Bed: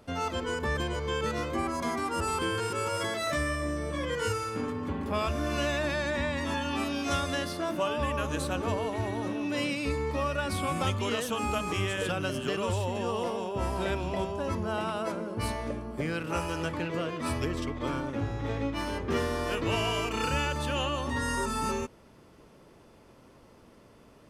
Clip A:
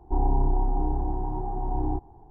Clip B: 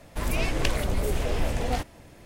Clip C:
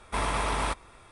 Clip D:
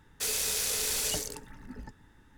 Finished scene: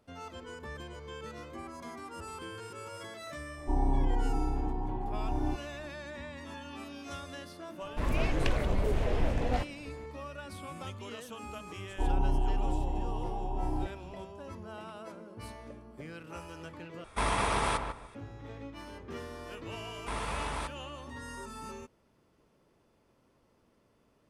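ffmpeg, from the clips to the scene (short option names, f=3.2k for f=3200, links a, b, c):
-filter_complex "[1:a]asplit=2[a][b];[3:a]asplit=2[c][d];[0:a]volume=-13dB[e];[a]equalizer=f=260:t=o:w=0.25:g=7.5[f];[2:a]aemphasis=mode=reproduction:type=75kf[g];[c]asplit=2[h][i];[i]adelay=149,lowpass=f=1.6k:p=1,volume=-5.5dB,asplit=2[j][k];[k]adelay=149,lowpass=f=1.6k:p=1,volume=0.25,asplit=2[l][m];[m]adelay=149,lowpass=f=1.6k:p=1,volume=0.25[n];[h][j][l][n]amix=inputs=4:normalize=0[o];[e]asplit=2[p][q];[p]atrim=end=17.044[r];[o]atrim=end=1.11,asetpts=PTS-STARTPTS,volume=-1dB[s];[q]atrim=start=18.146[t];[f]atrim=end=2.3,asetpts=PTS-STARTPTS,volume=-5.5dB,afade=t=in:d=0.004:c=hsin,afade=t=out:st=2.296:d=0.004:c=hsin,adelay=157437S[u];[g]atrim=end=2.25,asetpts=PTS-STARTPTS,volume=-2.5dB,afade=t=in:d=0.004:c=hsin,afade=t=out:st=2.246:d=0.004:c=hsin,adelay=7810[v];[b]atrim=end=2.3,asetpts=PTS-STARTPTS,volume=-5.5dB,afade=t=in:d=0.004:c=hsin,afade=t=out:st=2.296:d=0.004:c=hsin,adelay=11880[w];[d]atrim=end=1.11,asetpts=PTS-STARTPTS,volume=-8dB,afade=t=in:d=0.004:c=hsin,afade=t=out:st=1.106:d=0.004:c=hsin,adelay=19940[x];[r][s]acrossfade=d=0.004:c1=hsin:c2=hsin[y];[y][t]acrossfade=d=0.004:c1=hsin:c2=hsin[z];[z][u][v][w][x]amix=inputs=5:normalize=0"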